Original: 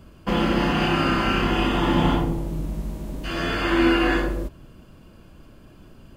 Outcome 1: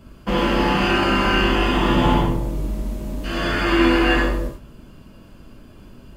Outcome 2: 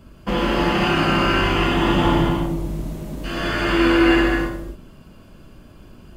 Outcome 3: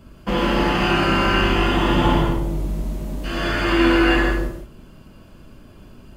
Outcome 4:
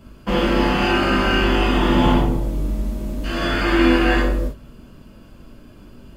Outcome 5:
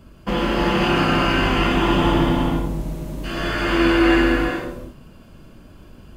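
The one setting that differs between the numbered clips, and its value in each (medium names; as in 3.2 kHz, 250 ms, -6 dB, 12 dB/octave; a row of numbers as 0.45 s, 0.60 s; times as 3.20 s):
gated-style reverb, gate: 130 ms, 300 ms, 200 ms, 80 ms, 480 ms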